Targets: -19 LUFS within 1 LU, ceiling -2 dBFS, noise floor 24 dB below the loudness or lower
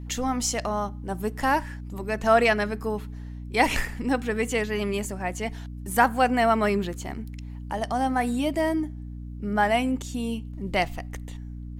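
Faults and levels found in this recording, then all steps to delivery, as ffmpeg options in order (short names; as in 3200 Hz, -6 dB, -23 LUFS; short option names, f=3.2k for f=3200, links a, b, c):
hum 60 Hz; harmonics up to 300 Hz; hum level -34 dBFS; loudness -26.0 LUFS; peak -6.0 dBFS; loudness target -19.0 LUFS
-> -af "bandreject=f=60:t=h:w=4,bandreject=f=120:t=h:w=4,bandreject=f=180:t=h:w=4,bandreject=f=240:t=h:w=4,bandreject=f=300:t=h:w=4"
-af "volume=7dB,alimiter=limit=-2dB:level=0:latency=1"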